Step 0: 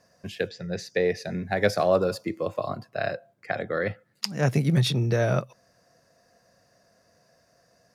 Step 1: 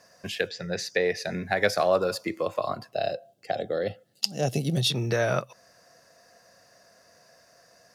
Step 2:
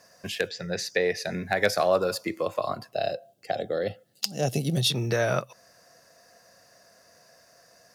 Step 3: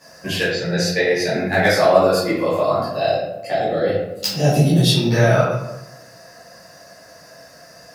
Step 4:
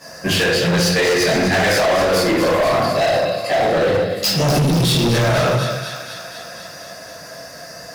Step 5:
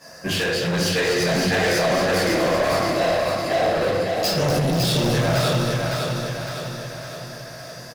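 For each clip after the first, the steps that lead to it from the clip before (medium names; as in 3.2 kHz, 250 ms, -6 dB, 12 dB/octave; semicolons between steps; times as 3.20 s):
time-frequency box 2.92–4.90 s, 820–2600 Hz -14 dB; bass shelf 400 Hz -10.5 dB; in parallel at +3 dB: compression, threshold -35 dBFS, peak gain reduction 15 dB
treble shelf 9.5 kHz +6 dB; wavefolder -10 dBFS
in parallel at 0 dB: compression, threshold -35 dBFS, peak gain reduction 17 dB; on the sum: reverberation RT60 0.95 s, pre-delay 9 ms, DRR -11.5 dB; trim -4.5 dB
peak limiter -10.5 dBFS, peak gain reduction 9 dB; feedback echo behind a high-pass 244 ms, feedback 69%, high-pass 1.6 kHz, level -8.5 dB; hard clipper -21.5 dBFS, distortion -8 dB; trim +8 dB
feedback delay 557 ms, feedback 52%, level -4 dB; trim -6 dB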